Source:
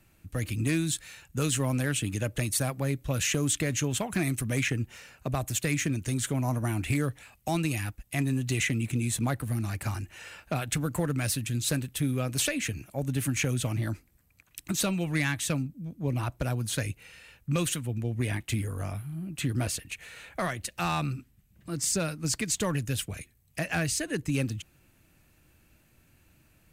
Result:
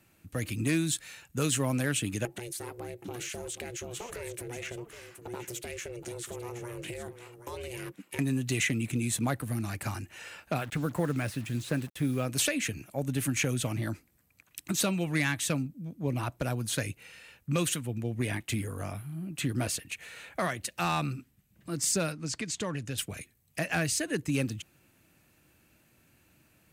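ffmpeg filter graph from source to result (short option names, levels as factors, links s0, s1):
-filter_complex "[0:a]asettb=1/sr,asplit=3[s0][s1][s2];[s0]atrim=end=2.254[s3];[s1]atrim=start=2.25:end=8.19,asetpts=PTS-STARTPTS,afade=t=in:d=0.004:c=qsin,afade=t=out:st=5.936:d=0.004:c=qsin,acompressor=threshold=0.0251:ratio=6:attack=3.2:release=140:knee=1:detection=peak,aeval=exprs='val(0)*sin(2*PI*240*n/s)':c=same,aecho=1:1:772:0.282,atrim=end_sample=261954[s4];[s2]atrim=start=8.186[s5];[s3][s4]acrossfade=d=0.004:c1=hsin:c2=qsin[s6];[s6][s5]acrossfade=d=0.004:c1=qsin:c2=hsin,asettb=1/sr,asplit=3[s7][s8][s9];[s7]atrim=end=10.584[s10];[s8]atrim=start=10.58:end=12.26,asetpts=PTS-STARTPTS,afade=t=in:d=0.004:c=qsin,afade=t=out:st=1.676:d=0.004:c=qsin,agate=range=0.0224:threshold=0.0112:ratio=3:release=100:detection=peak,acrossover=split=2600[s11][s12];[s12]acompressor=threshold=0.00562:ratio=4:attack=1:release=60[s13];[s11][s13]amix=inputs=2:normalize=0,acrusher=bits=7:mix=0:aa=0.5[s14];[s9]atrim=start=12.256[s15];[s10][s14]acrossfade=d=0.004:c1=hsin:c2=qsin[s16];[s16][s15]acrossfade=d=0.004:c1=qsin:c2=hsin,asettb=1/sr,asplit=3[s17][s18][s19];[s17]atrim=end=22.124[s20];[s18]atrim=start=22.12:end=22.98,asetpts=PTS-STARTPTS,afade=t=in:d=0.004:c=qsin,afade=t=out:st=0.856:d=0.004:c=qsin,lowpass=7100,acompressor=threshold=0.0158:ratio=1.5:attack=3.2:release=140:knee=1:detection=peak[s21];[s19]atrim=start=22.976[s22];[s20][s21]acrossfade=d=0.004:c1=hsin:c2=qsin[s23];[s23][s22]acrossfade=d=0.004:c1=qsin:c2=hsin,highpass=f=240:p=1,lowshelf=f=370:g=4"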